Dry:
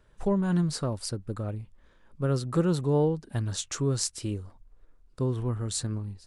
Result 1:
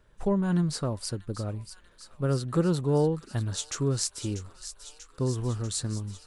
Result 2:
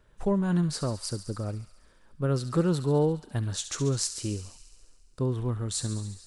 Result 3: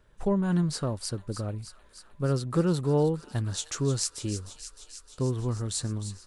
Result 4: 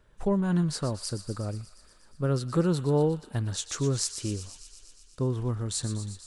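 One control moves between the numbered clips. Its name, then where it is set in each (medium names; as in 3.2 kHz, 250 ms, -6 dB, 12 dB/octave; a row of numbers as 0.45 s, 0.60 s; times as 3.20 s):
feedback echo behind a high-pass, time: 640 ms, 69 ms, 307 ms, 120 ms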